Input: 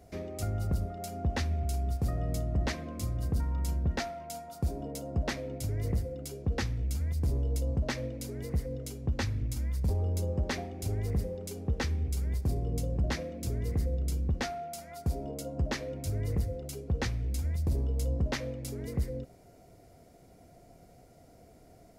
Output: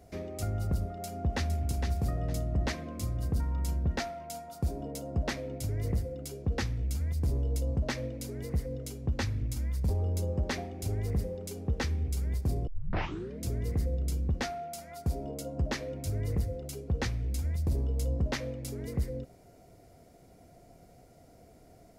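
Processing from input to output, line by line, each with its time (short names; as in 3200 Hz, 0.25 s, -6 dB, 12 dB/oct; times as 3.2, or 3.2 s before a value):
0.86–1.65 echo throw 0.46 s, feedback 25%, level -6.5 dB
12.67 tape start 0.78 s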